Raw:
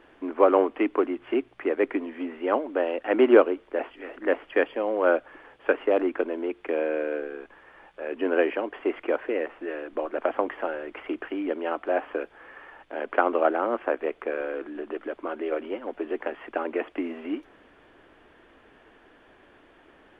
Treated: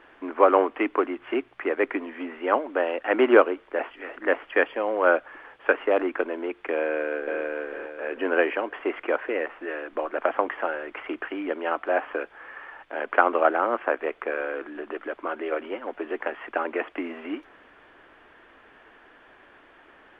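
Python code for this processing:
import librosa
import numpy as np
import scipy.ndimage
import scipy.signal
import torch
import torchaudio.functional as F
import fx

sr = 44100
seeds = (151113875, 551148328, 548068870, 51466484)

y = fx.echo_throw(x, sr, start_s=6.82, length_s=0.59, ms=450, feedback_pct=35, wet_db=-2.5)
y = fx.peak_eq(y, sr, hz=1500.0, db=9.0, octaves=2.6)
y = y * librosa.db_to_amplitude(-3.5)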